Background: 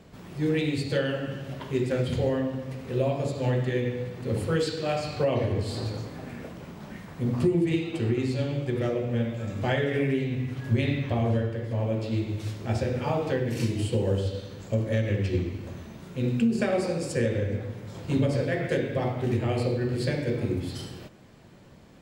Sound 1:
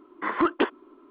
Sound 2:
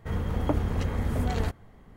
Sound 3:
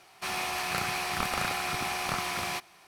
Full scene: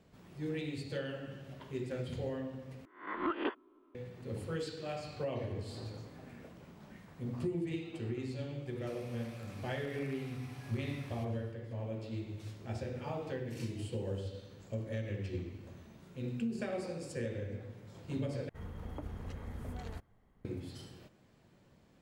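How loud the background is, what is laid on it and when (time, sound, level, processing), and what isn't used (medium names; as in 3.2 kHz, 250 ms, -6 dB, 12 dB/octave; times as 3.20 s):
background -12.5 dB
2.85 s: replace with 1 -13.5 dB + reverse spectral sustain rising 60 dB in 0.42 s
8.65 s: add 3 -15 dB + compression, threshold -39 dBFS
18.49 s: replace with 2 -15.5 dB + peak limiter -15.5 dBFS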